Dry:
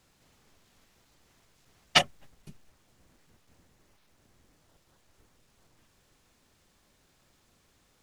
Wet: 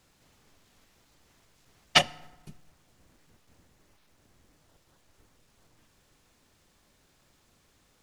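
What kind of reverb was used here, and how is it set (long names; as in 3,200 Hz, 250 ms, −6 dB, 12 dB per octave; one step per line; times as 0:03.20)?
feedback delay network reverb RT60 1.1 s, low-frequency decay 1.25×, high-frequency decay 0.6×, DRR 18.5 dB
level +1 dB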